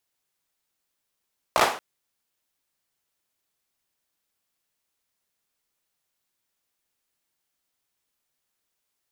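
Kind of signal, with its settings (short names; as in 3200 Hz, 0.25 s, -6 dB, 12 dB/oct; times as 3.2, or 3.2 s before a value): hand clap length 0.23 s, apart 17 ms, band 790 Hz, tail 0.41 s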